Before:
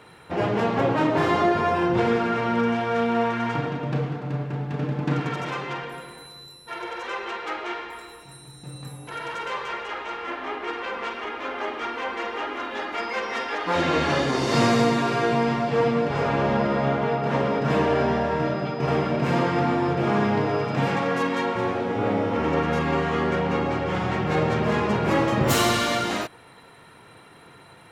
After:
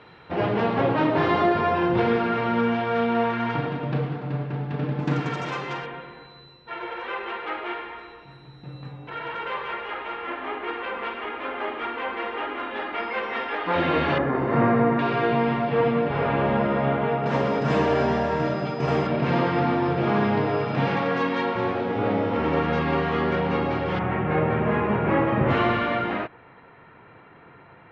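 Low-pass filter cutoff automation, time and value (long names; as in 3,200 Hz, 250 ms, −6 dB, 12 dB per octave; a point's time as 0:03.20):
low-pass filter 24 dB per octave
4,400 Hz
from 0:05.00 7,700 Hz
from 0:05.86 3,400 Hz
from 0:14.18 1,900 Hz
from 0:14.99 3,400 Hz
from 0:17.26 7,600 Hz
from 0:19.07 4,600 Hz
from 0:23.99 2,500 Hz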